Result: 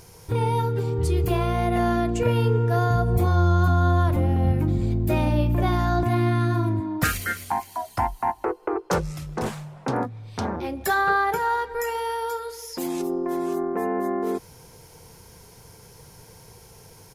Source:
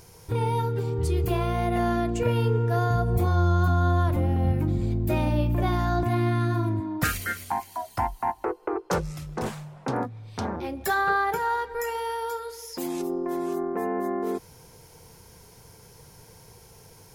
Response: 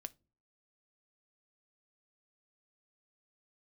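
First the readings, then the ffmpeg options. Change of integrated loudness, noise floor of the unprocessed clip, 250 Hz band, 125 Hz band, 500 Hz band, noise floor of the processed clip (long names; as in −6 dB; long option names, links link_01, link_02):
+2.5 dB, −52 dBFS, +2.5 dB, +2.5 dB, +2.5 dB, −49 dBFS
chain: -af "aresample=32000,aresample=44100,volume=2.5dB"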